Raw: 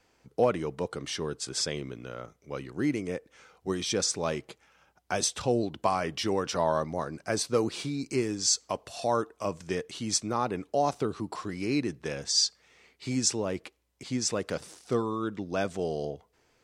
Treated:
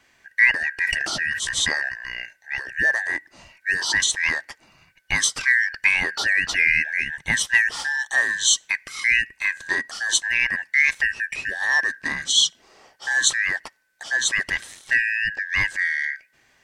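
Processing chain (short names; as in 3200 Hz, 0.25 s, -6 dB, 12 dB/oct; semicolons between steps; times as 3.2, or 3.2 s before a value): four-band scrambler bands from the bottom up 2143; 0.77–1.89 sustainer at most 25 dB/s; gain +7.5 dB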